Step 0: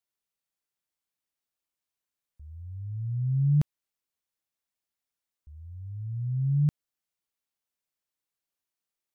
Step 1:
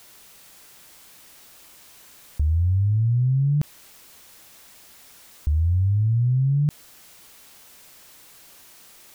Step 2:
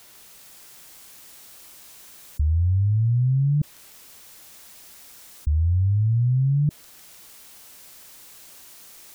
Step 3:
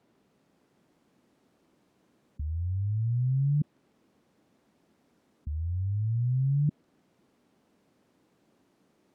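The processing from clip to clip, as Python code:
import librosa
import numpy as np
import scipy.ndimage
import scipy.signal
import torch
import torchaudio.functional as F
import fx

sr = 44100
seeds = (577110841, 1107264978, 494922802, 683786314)

y1 = fx.env_flatten(x, sr, amount_pct=100)
y2 = fx.echo_wet_highpass(y1, sr, ms=152, feedback_pct=82, hz=4700.0, wet_db=-4.0)
y2 = fx.spec_gate(y2, sr, threshold_db=-25, keep='strong')
y3 = fx.bandpass_q(y2, sr, hz=240.0, q=1.4)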